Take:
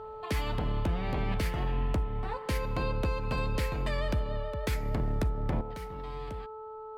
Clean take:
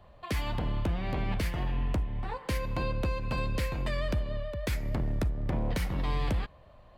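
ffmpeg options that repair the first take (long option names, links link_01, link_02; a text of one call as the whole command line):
ffmpeg -i in.wav -af "bandreject=frequency=435.7:width_type=h:width=4,bandreject=frequency=871.4:width_type=h:width=4,bandreject=frequency=1307.1:width_type=h:width=4,asetnsamples=nb_out_samples=441:pad=0,asendcmd='5.61 volume volume 11.5dB',volume=0dB" out.wav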